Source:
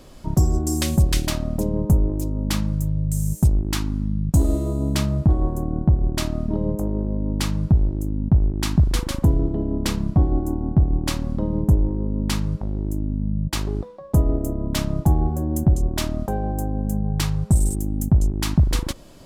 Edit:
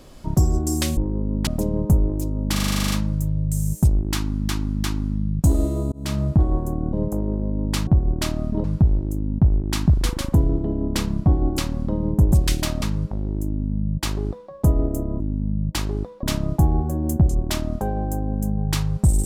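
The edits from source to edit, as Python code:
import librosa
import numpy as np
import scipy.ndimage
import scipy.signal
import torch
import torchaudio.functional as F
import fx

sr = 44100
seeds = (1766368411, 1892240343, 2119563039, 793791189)

y = fx.edit(x, sr, fx.swap(start_s=0.97, length_s=0.5, other_s=11.82, other_length_s=0.5),
    fx.stutter(start_s=2.52, slice_s=0.04, count=11),
    fx.repeat(start_s=3.74, length_s=0.35, count=3),
    fx.fade_in_span(start_s=4.82, length_s=0.28),
    fx.move(start_s=5.83, length_s=0.77, to_s=7.54),
    fx.cut(start_s=10.48, length_s=0.6),
    fx.duplicate(start_s=12.98, length_s=1.03, to_s=14.7), tone=tone)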